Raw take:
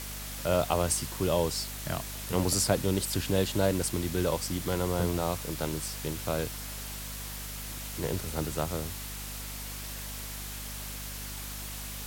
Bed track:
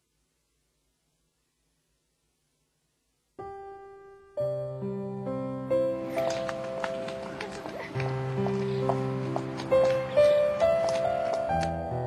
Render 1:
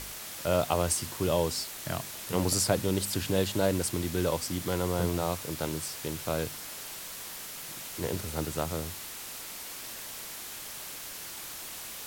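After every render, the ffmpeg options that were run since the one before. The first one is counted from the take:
-af "bandreject=f=50:t=h:w=4,bandreject=f=100:t=h:w=4,bandreject=f=150:t=h:w=4,bandreject=f=200:t=h:w=4,bandreject=f=250:t=h:w=4"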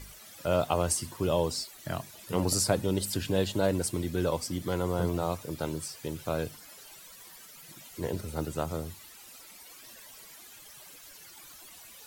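-af "afftdn=nr=14:nf=-42"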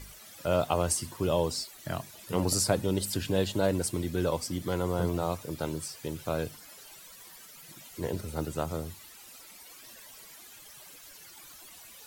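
-af anull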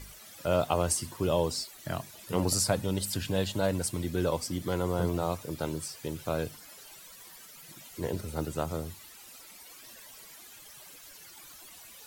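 -filter_complex "[0:a]asettb=1/sr,asplit=3[a][b][c];[a]atrim=end=2.504[d];[b]atrim=start=2.5:end=4.04,asetpts=PTS-STARTPTS,afade=t=in:d=0.004:c=qsin,afade=t=out:st=1.536:d=0.004:c=qsin,equalizer=f=360:t=o:w=0.77:g=-6[e];[c]atrim=start=4.036[f];[d][e]acrossfade=d=0.004:c1=hsin:c2=qsin[g];[g][f]acrossfade=d=0.004:c1=qsin:c2=hsin"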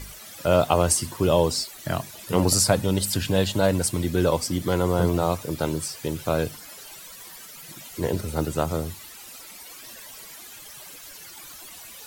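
-af "volume=7.5dB"

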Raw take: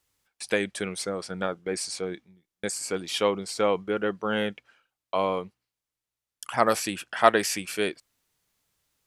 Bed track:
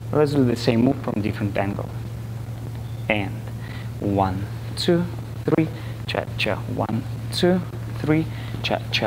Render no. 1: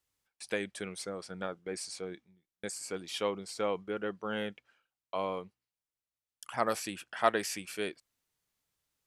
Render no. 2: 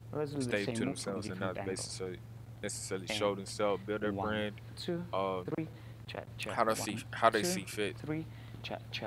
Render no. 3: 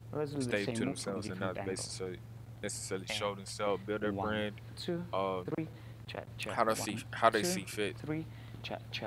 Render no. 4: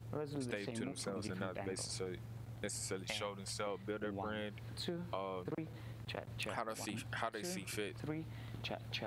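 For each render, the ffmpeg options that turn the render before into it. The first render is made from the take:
-af "volume=-8.5dB"
-filter_complex "[1:a]volume=-18dB[a];[0:a][a]amix=inputs=2:normalize=0"
-filter_complex "[0:a]asettb=1/sr,asplit=3[a][b][c];[a]atrim=end=3.034[d];[b]atrim=start=3.03:end=3.67,asetpts=PTS-STARTPTS,afade=t=in:d=0.004:c=qsin,afade=t=out:st=0.636:d=0.004:c=qsin,equalizer=f=320:w=1.5:g=-12.5[e];[c]atrim=start=3.666[f];[d][e]acrossfade=d=0.004:c1=hsin:c2=qsin[g];[g][f]acrossfade=d=0.004:c1=qsin:c2=hsin"
-af "acompressor=threshold=-37dB:ratio=10"

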